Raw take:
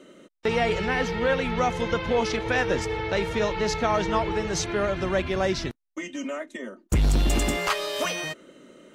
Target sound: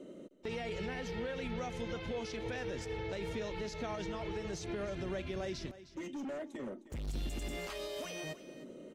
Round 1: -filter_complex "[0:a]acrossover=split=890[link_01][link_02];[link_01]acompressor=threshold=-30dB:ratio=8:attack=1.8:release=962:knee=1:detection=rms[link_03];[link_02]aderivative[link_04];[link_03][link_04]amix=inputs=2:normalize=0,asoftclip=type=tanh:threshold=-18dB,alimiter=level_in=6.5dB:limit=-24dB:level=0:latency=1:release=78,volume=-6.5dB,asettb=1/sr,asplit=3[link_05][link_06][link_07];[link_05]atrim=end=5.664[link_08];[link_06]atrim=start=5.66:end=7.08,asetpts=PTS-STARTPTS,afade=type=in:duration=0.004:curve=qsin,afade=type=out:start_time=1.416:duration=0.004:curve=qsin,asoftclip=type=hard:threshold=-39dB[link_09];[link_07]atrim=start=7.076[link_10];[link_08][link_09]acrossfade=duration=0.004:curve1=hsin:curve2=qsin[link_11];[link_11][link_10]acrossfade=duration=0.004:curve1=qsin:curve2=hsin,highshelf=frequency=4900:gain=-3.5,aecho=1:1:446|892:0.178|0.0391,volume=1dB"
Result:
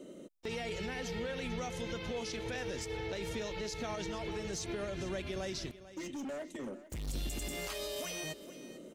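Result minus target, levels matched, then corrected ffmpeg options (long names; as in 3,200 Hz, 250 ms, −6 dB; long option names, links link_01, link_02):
echo 137 ms late; 8,000 Hz band +6.5 dB
-filter_complex "[0:a]acrossover=split=890[link_01][link_02];[link_01]acompressor=threshold=-30dB:ratio=8:attack=1.8:release=962:knee=1:detection=rms[link_03];[link_02]aderivative[link_04];[link_03][link_04]amix=inputs=2:normalize=0,asoftclip=type=tanh:threshold=-18dB,alimiter=level_in=6.5dB:limit=-24dB:level=0:latency=1:release=78,volume=-6.5dB,asettb=1/sr,asplit=3[link_05][link_06][link_07];[link_05]atrim=end=5.664[link_08];[link_06]atrim=start=5.66:end=7.08,asetpts=PTS-STARTPTS,afade=type=in:duration=0.004:curve=qsin,afade=type=out:start_time=1.416:duration=0.004:curve=qsin,asoftclip=type=hard:threshold=-39dB[link_09];[link_07]atrim=start=7.076[link_10];[link_08][link_09]acrossfade=duration=0.004:curve1=hsin:curve2=qsin[link_11];[link_11][link_10]acrossfade=duration=0.004:curve1=qsin:curve2=hsin,highshelf=frequency=4900:gain=-15,aecho=1:1:309|618:0.178|0.0391,volume=1dB"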